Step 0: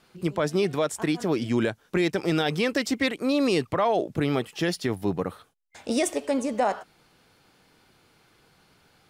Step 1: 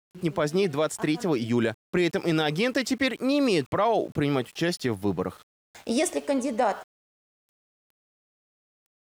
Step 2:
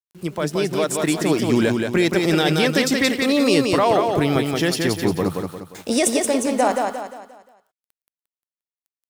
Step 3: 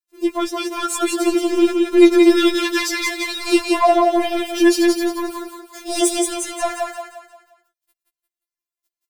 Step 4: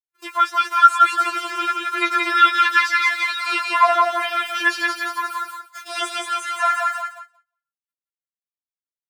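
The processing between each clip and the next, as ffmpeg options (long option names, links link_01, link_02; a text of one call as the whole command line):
ffmpeg -i in.wav -af "aeval=exprs='val(0)*gte(abs(val(0)),0.00355)':channel_layout=same" out.wav
ffmpeg -i in.wav -af "highshelf=frequency=6100:gain=7.5,dynaudnorm=framelen=180:gausssize=9:maxgain=5dB,aecho=1:1:176|352|528|704|880:0.631|0.252|0.101|0.0404|0.0162" out.wav
ffmpeg -i in.wav -af "asoftclip=type=tanh:threshold=-13dB,afftfilt=real='re*4*eq(mod(b,16),0)':imag='im*4*eq(mod(b,16),0)':win_size=2048:overlap=0.75,volume=5dB" out.wav
ffmpeg -i in.wav -filter_complex "[0:a]agate=range=-33dB:threshold=-33dB:ratio=3:detection=peak,acrossover=split=3800[link_01][link_02];[link_02]acompressor=threshold=-40dB:ratio=4:attack=1:release=60[link_03];[link_01][link_03]amix=inputs=2:normalize=0,highpass=frequency=1300:width_type=q:width=5.9,volume=1dB" out.wav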